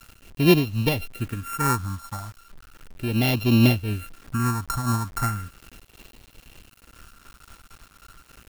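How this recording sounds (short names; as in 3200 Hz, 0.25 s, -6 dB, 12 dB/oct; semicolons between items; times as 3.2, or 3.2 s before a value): a buzz of ramps at a fixed pitch in blocks of 32 samples; phasing stages 4, 0.36 Hz, lowest notch 450–1400 Hz; a quantiser's noise floor 8-bit, dither none; noise-modulated level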